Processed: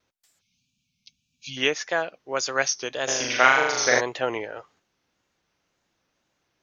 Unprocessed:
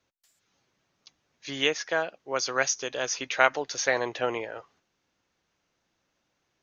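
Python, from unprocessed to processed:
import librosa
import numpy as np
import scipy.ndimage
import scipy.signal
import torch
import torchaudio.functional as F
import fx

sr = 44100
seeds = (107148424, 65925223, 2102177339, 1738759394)

y = fx.spec_box(x, sr, start_s=0.41, length_s=1.16, low_hz=270.0, high_hz=2200.0, gain_db=-28)
y = fx.room_flutter(y, sr, wall_m=6.7, rt60_s=1.1, at=(3.07, 3.99), fade=0.02)
y = fx.wow_flutter(y, sr, seeds[0], rate_hz=2.1, depth_cents=80.0)
y = y * librosa.db_to_amplitude(2.0)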